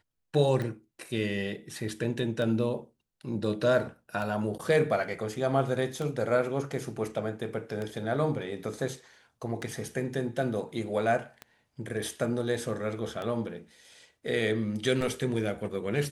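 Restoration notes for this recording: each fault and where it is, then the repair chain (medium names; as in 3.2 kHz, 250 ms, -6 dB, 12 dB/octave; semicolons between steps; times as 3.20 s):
tick 33 1/3 rpm -22 dBFS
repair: de-click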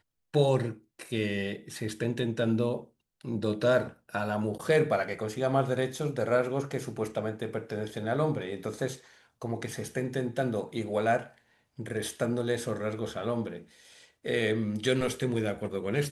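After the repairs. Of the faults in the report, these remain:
nothing left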